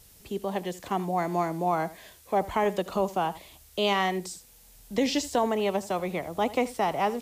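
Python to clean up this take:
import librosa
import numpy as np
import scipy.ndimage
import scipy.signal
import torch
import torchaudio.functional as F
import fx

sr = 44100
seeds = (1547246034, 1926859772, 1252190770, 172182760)

y = fx.noise_reduce(x, sr, print_start_s=4.4, print_end_s=4.9, reduce_db=19.0)
y = fx.fix_echo_inverse(y, sr, delay_ms=79, level_db=-18.0)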